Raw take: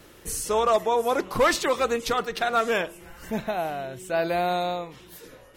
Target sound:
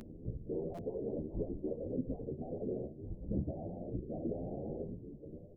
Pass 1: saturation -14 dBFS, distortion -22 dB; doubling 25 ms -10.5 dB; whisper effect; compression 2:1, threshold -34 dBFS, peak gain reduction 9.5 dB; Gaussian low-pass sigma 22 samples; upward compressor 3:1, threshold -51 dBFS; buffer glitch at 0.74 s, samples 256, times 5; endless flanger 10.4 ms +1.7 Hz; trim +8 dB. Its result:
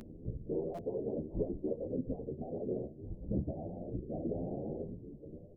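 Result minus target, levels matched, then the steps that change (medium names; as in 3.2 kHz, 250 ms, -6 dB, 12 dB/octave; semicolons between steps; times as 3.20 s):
saturation: distortion -14 dB
change: saturation -25.5 dBFS, distortion -8 dB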